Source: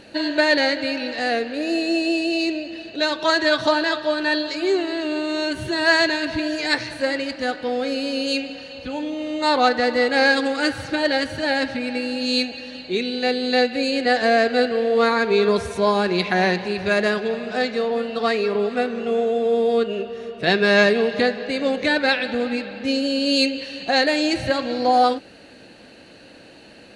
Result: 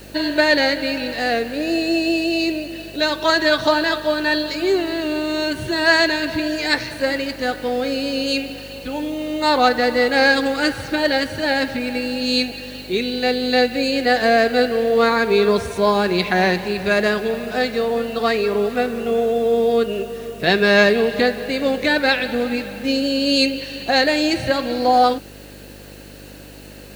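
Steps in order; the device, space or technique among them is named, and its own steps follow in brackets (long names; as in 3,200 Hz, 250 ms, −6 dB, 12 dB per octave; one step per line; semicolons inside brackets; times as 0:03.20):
video cassette with head-switching buzz (hum with harmonics 50 Hz, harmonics 11, −44 dBFS −3 dB per octave; white noise bed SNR 29 dB)
level +2 dB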